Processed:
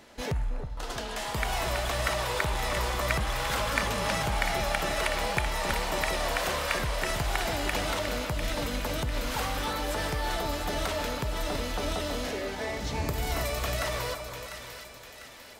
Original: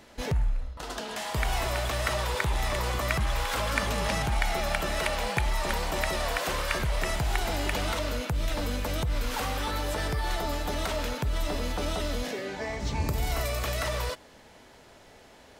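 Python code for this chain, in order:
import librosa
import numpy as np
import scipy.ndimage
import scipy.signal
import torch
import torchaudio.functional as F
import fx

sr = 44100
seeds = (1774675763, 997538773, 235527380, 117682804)

y = fx.low_shelf(x, sr, hz=130.0, db=-5.0)
y = fx.echo_split(y, sr, split_hz=1400.0, low_ms=322, high_ms=698, feedback_pct=52, wet_db=-8.0)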